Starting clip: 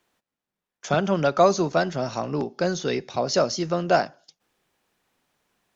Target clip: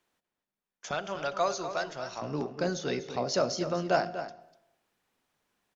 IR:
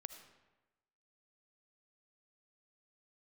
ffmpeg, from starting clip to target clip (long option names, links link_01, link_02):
-filter_complex "[0:a]bandreject=frequency=55.29:width_type=h:width=4,bandreject=frequency=110.58:width_type=h:width=4,bandreject=frequency=165.87:width_type=h:width=4,bandreject=frequency=221.16:width_type=h:width=4,bandreject=frequency=276.45:width_type=h:width=4,bandreject=frequency=331.74:width_type=h:width=4,bandreject=frequency=387.03:width_type=h:width=4,bandreject=frequency=442.32:width_type=h:width=4,bandreject=frequency=497.61:width_type=h:width=4,bandreject=frequency=552.9:width_type=h:width=4,bandreject=frequency=608.19:width_type=h:width=4,bandreject=frequency=663.48:width_type=h:width=4,bandreject=frequency=718.77:width_type=h:width=4,asettb=1/sr,asplit=3[link_01][link_02][link_03];[link_01]atrim=end=0.914[link_04];[link_02]atrim=start=0.91:end=2.22,asetpts=PTS-STARTPTS,afade=type=in:duration=0.004:curve=qsin,afade=type=out:start_time=1.306:duration=0.004:curve=qsin,equalizer=frequency=200:width=0.53:gain=-14.5[link_05];[link_03]atrim=start=2.216[link_06];[link_04][link_05]acrossfade=duration=0.004:curve1=hsin:curve2=qsin[link_07];[link_07][link_06]acrossfade=duration=0.004:curve1=qsin:curve2=hsin,asplit=2[link_08][link_09];[link_09]adelay=244.9,volume=-10dB,highshelf=frequency=4000:gain=-5.51[link_10];[link_08][link_10]amix=inputs=2:normalize=0,asplit=2[link_11][link_12];[1:a]atrim=start_sample=2205,asetrate=48510,aresample=44100[link_13];[link_12][link_13]afir=irnorm=-1:irlink=0,volume=-1.5dB[link_14];[link_11][link_14]amix=inputs=2:normalize=0,volume=-9dB"